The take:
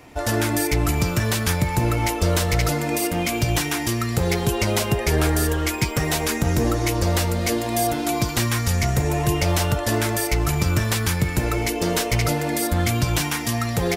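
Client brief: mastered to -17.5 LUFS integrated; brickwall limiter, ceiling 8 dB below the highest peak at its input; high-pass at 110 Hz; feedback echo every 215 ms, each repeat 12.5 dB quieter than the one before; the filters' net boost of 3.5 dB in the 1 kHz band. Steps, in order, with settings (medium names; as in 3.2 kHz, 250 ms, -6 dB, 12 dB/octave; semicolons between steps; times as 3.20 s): high-pass 110 Hz; peaking EQ 1 kHz +5 dB; peak limiter -14 dBFS; feedback delay 215 ms, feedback 24%, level -12.5 dB; trim +6 dB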